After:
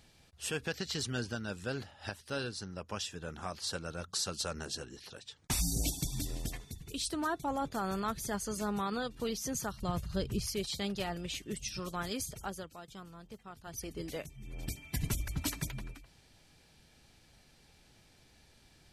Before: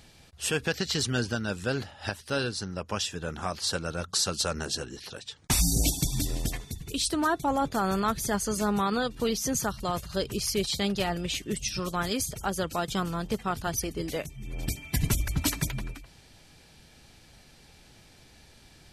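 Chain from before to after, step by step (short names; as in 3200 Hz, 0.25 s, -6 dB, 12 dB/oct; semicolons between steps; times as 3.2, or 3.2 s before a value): 9.82–10.47 tone controls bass +10 dB, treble -2 dB; 12.4–13.94 dip -11.5 dB, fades 0.31 s; gain -8 dB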